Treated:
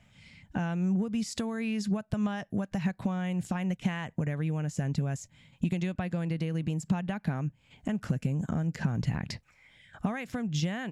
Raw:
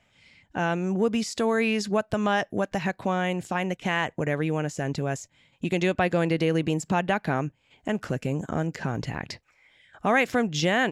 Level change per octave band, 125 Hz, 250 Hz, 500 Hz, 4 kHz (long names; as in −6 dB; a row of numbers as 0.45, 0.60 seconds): 0.0, −2.5, −13.5, −9.5 decibels